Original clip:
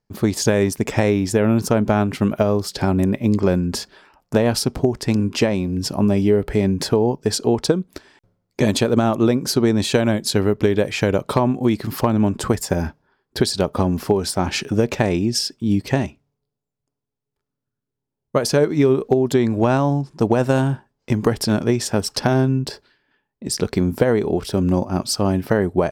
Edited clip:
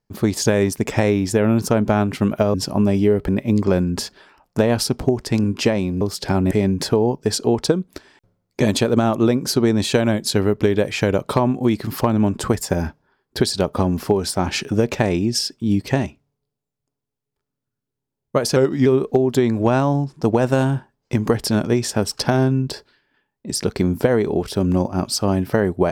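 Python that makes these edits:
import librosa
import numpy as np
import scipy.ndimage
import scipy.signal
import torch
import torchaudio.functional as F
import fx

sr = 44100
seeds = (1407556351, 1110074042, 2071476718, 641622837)

y = fx.edit(x, sr, fx.swap(start_s=2.54, length_s=0.5, other_s=5.77, other_length_s=0.74),
    fx.speed_span(start_s=18.56, length_s=0.27, speed=0.9), tone=tone)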